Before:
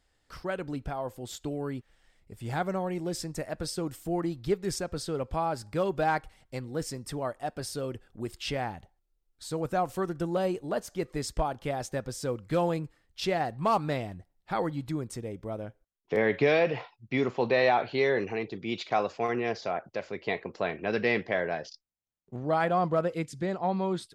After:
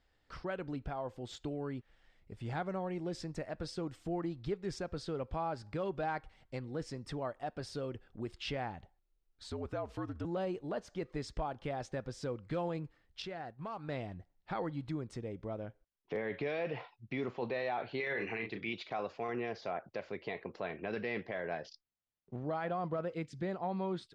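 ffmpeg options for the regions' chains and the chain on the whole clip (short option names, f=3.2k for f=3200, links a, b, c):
-filter_complex "[0:a]asettb=1/sr,asplit=3[a][b][c];[a]atrim=end=9.504[d];[b]atrim=start=9.5:end=10.25,asetpts=PTS-STARTPTS,afade=t=in:d=0.004:c=qsin,afade=t=out:st=0.746:d=0.004:c=qsin,afreqshift=-63,equalizer=f=7.4k:w=1.4:g=-3.5,acompressor=threshold=-36dB:ratio=1.5:attack=3.2:release=140:knee=1:detection=peak[e];[c]atrim=start=10.246[f];[d][e]acrossfade=d=0.004:c1=hsin:c2=qsin[g];[g][f]acrossfade=d=0.004:c1=qsin:c2=hsin,asettb=1/sr,asplit=3[h][i][j];[h]atrim=end=13.224[k];[i]atrim=start=13.22:end=13.89,asetpts=PTS-STARTPTS,afade=t=in:d=0.004:c=qsin,afade=t=out:st=0.666:d=0.004:c=qsin,agate=range=-33dB:threshold=-33dB:ratio=3:release=100:detection=peak,equalizer=f=1.5k:w=5:g=6,acompressor=threshold=-42dB:ratio=2.5:attack=3.2:release=140:knee=1:detection=peak[l];[j]atrim=start=13.886[m];[k][l]acrossfade=d=0.004:c1=hsin:c2=qsin[n];[n][m]acrossfade=d=0.004:c1=qsin:c2=hsin,asettb=1/sr,asplit=3[o][p][q];[o]atrim=end=18.004[r];[p]atrim=start=18:end=18.73,asetpts=PTS-STARTPTS,afade=t=in:d=0.004:c=qsin,afade=t=out:st=0.726:d=0.004:c=qsin,equalizer=f=2.2k:t=o:w=1.4:g=11,asplit=2[s][t];[t]adelay=35,volume=-7dB[u];[s][u]amix=inputs=2:normalize=0,atrim=end_sample=32193[v];[q]atrim=start=18.726[w];[r][v]acrossfade=d=0.004:c1=hsin:c2=qsin[x];[x][w]acrossfade=d=0.004:c1=qsin:c2=hsin,lowpass=4.3k,acompressor=threshold=-39dB:ratio=1.5,alimiter=level_in=1.5dB:limit=-24dB:level=0:latency=1:release=13,volume=-1.5dB,volume=-2dB"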